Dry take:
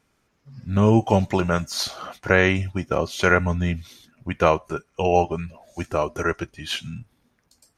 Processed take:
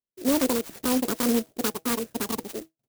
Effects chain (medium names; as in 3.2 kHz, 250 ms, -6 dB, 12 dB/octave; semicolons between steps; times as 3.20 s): expander -48 dBFS; tone controls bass +13 dB, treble -8 dB; hum notches 60/120/180/240/300 Hz; peak limiter -5.5 dBFS, peak gain reduction 6 dB; wide varispeed 2.69×; sampling jitter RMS 0.14 ms; trim -9 dB